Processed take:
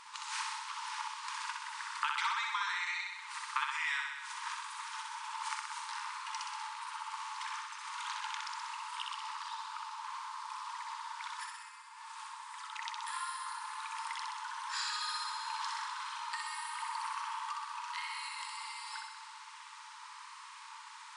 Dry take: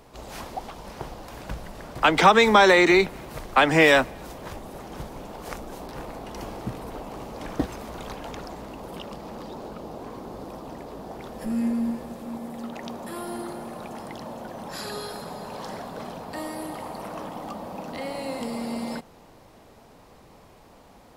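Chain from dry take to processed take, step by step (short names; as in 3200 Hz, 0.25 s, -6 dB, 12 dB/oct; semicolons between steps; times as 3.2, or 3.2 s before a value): compressor 8:1, threshold -38 dBFS, peak gain reduction 26.5 dB; FFT band-pass 860–10000 Hz; on a send: flutter echo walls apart 10.8 m, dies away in 1.1 s; on the sum: gain +5.5 dB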